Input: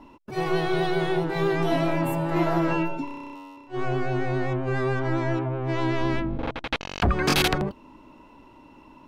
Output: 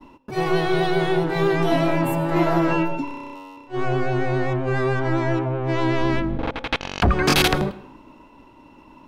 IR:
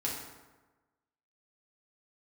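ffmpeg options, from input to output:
-filter_complex "[0:a]agate=range=-33dB:threshold=-47dB:ratio=3:detection=peak,asplit=2[a][b];[1:a]atrim=start_sample=2205,asetrate=79380,aresample=44100,adelay=100[c];[b][c]afir=irnorm=-1:irlink=0,volume=-17.5dB[d];[a][d]amix=inputs=2:normalize=0,volume=4dB"

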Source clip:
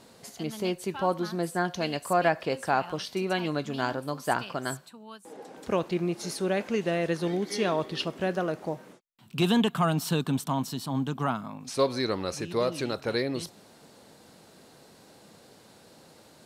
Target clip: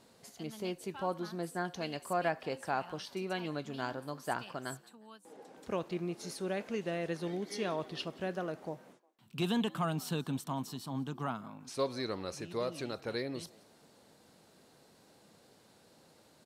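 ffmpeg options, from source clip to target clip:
-filter_complex "[0:a]asplit=3[a][b][c];[b]adelay=179,afreqshift=86,volume=-24dB[d];[c]adelay=358,afreqshift=172,volume=-32.4dB[e];[a][d][e]amix=inputs=3:normalize=0,volume=-8.5dB"

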